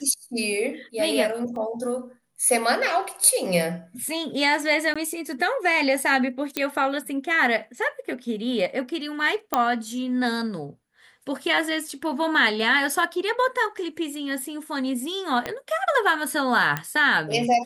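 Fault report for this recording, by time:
1.56 gap 2.3 ms
4.94–4.96 gap 16 ms
6.57 pop -9 dBFS
9.54 pop -6 dBFS
15.46 pop -13 dBFS
16.77 pop -11 dBFS

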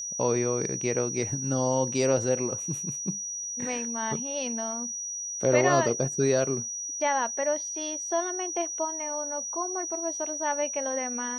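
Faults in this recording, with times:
tone 5800 Hz -32 dBFS

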